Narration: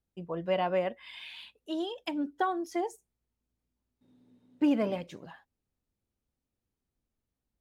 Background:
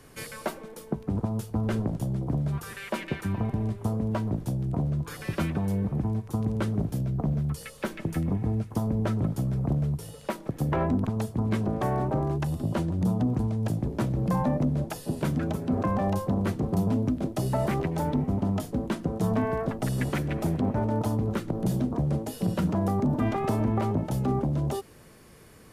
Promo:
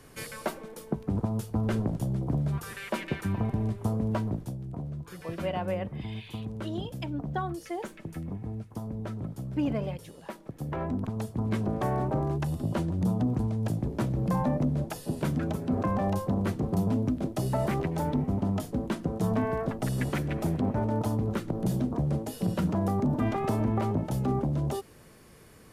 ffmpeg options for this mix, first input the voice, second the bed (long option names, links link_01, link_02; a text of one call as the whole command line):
ffmpeg -i stem1.wav -i stem2.wav -filter_complex "[0:a]adelay=4950,volume=-3.5dB[link_01];[1:a]volume=7dB,afade=type=out:start_time=4.19:duration=0.39:silence=0.375837,afade=type=in:start_time=10.54:duration=1.16:silence=0.421697[link_02];[link_01][link_02]amix=inputs=2:normalize=0" out.wav